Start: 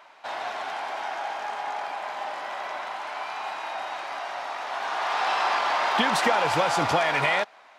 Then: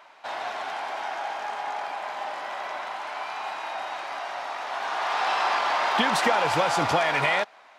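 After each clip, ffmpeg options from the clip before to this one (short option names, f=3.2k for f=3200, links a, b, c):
-af anull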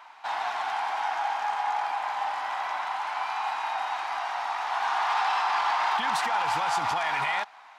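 -af "alimiter=limit=-20dB:level=0:latency=1:release=38,lowshelf=f=680:t=q:w=3:g=-6"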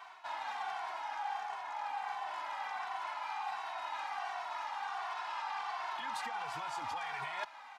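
-filter_complex "[0:a]areverse,acompressor=threshold=-35dB:ratio=10,areverse,asplit=2[a][b];[b]adelay=2.2,afreqshift=-1.4[c];[a][c]amix=inputs=2:normalize=1,volume=1.5dB"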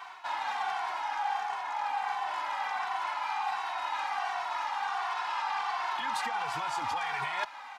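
-af "bandreject=f=650:w=12,volume=7dB"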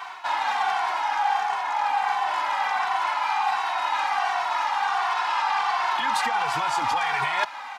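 -af "highpass=93,volume=8.5dB"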